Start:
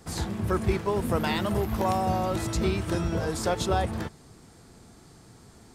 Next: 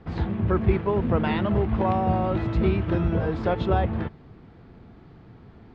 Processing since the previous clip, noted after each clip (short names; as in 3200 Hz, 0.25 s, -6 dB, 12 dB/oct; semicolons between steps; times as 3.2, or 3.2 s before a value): LPF 3100 Hz 24 dB/oct; low shelf 450 Hz +5.5 dB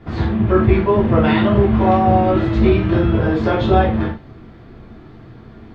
non-linear reverb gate 0.13 s falling, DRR -4.5 dB; gain +3.5 dB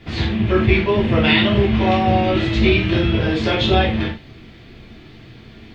resonant high shelf 1800 Hz +11 dB, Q 1.5; gain -2 dB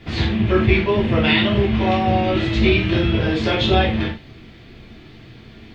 vocal rider within 3 dB 2 s; gain -1 dB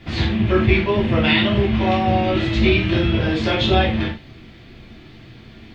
notch 440 Hz, Q 12